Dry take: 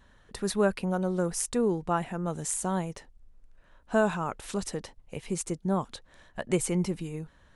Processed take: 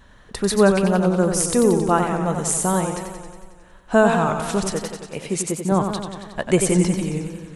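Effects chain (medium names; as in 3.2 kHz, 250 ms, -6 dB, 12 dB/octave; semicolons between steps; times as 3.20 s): 4.71–5.72 s: high-pass 210 Hz 6 dB/octave; modulated delay 91 ms, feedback 68%, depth 95 cents, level -7 dB; trim +9 dB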